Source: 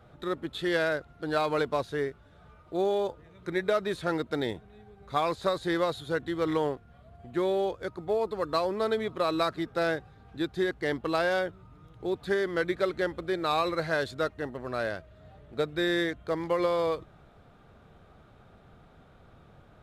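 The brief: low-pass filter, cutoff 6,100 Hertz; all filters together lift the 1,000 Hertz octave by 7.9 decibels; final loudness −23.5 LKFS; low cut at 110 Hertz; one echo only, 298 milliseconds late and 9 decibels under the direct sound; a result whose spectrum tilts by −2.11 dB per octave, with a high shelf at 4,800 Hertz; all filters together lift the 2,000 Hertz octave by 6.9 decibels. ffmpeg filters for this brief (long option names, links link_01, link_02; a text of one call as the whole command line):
ffmpeg -i in.wav -af "highpass=110,lowpass=6100,equalizer=frequency=1000:width_type=o:gain=8.5,equalizer=frequency=2000:width_type=o:gain=4.5,highshelf=frequency=4800:gain=7.5,aecho=1:1:298:0.355,volume=2dB" out.wav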